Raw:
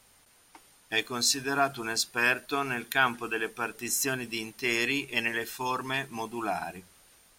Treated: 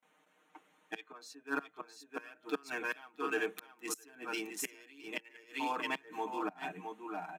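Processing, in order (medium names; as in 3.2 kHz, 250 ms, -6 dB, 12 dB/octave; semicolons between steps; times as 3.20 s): local Wiener filter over 9 samples; 0.98–1.41 s: peaking EQ 2 kHz -> 450 Hz +13 dB 2.9 oct; delay 665 ms -6 dB; inverted gate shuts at -18 dBFS, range -25 dB; steep high-pass 180 Hz 48 dB/octave; comb 6.5 ms, depth 96%; gate with hold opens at -57 dBFS; trim -6 dB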